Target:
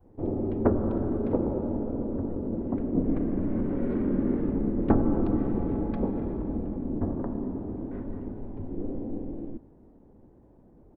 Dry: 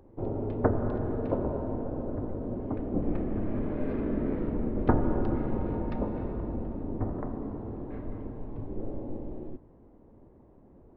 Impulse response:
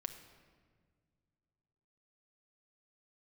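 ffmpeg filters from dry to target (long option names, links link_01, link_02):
-af "adynamicequalizer=threshold=0.00708:dfrequency=310:dqfactor=1.2:tfrequency=310:tqfactor=1.2:attack=5:release=100:ratio=0.375:range=3:mode=boostabove:tftype=bell,asoftclip=type=tanh:threshold=-9.5dB,asetrate=40440,aresample=44100,atempo=1.09051"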